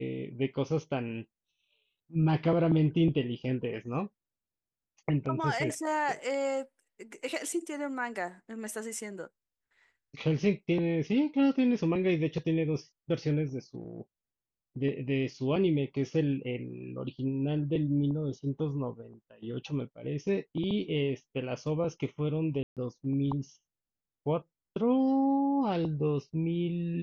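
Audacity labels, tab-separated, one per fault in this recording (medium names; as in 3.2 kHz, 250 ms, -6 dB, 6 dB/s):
22.630000	22.770000	dropout 137 ms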